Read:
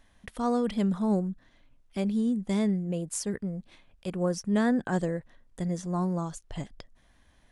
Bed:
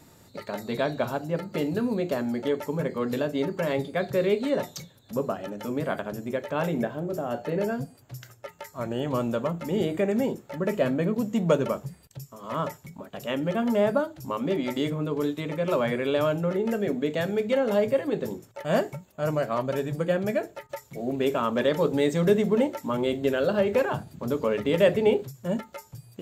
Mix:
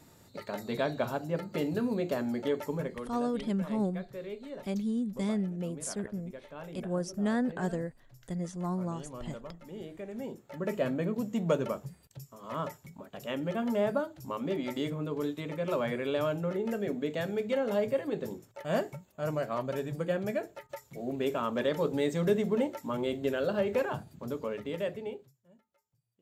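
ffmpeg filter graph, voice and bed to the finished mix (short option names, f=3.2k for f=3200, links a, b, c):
-filter_complex "[0:a]adelay=2700,volume=-4.5dB[a];[1:a]volume=7dB,afade=t=out:st=2.7:d=0.4:silence=0.223872,afade=t=in:st=10.1:d=0.6:silence=0.281838,afade=t=out:st=23.89:d=1.55:silence=0.0398107[b];[a][b]amix=inputs=2:normalize=0"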